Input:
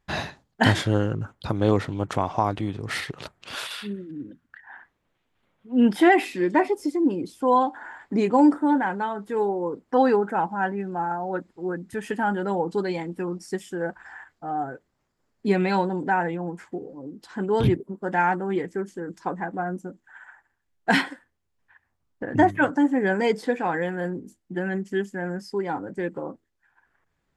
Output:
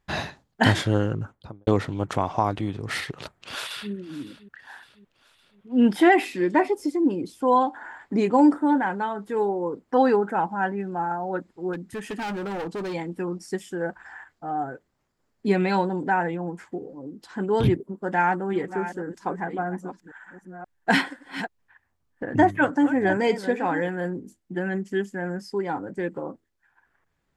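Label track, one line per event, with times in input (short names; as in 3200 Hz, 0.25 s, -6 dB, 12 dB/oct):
1.140000	1.670000	studio fade out
3.180000	3.920000	echo throw 0.56 s, feedback 55%, level -17 dB
11.730000	12.940000	overloaded stage gain 28 dB
18.000000	23.890000	reverse delay 0.529 s, level -11.5 dB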